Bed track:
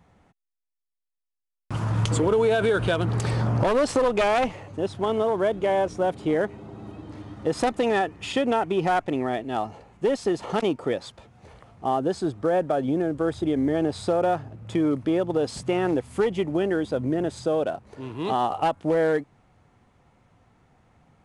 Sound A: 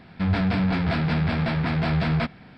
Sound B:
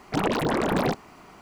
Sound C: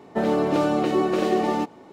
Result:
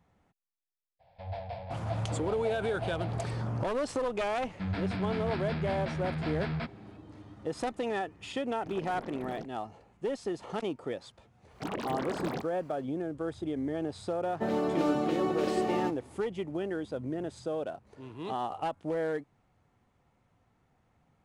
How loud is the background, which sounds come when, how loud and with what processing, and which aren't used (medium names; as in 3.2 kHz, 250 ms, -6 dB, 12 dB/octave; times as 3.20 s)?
bed track -10 dB
0.99 s: add A -15.5 dB, fades 0.02 s + FFT filter 120 Hz 0 dB, 180 Hz -17 dB, 350 Hz -25 dB, 550 Hz +12 dB, 820 Hz +9 dB, 1.3 kHz -14 dB, 1.9 kHz -6 dB, 3.4 kHz -3 dB, 8.7 kHz -7 dB
4.40 s: add A -11 dB
8.52 s: add B -18 dB + local Wiener filter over 41 samples
11.48 s: add B -11.5 dB, fades 0.10 s + high-pass 54 Hz
14.25 s: add C -8 dB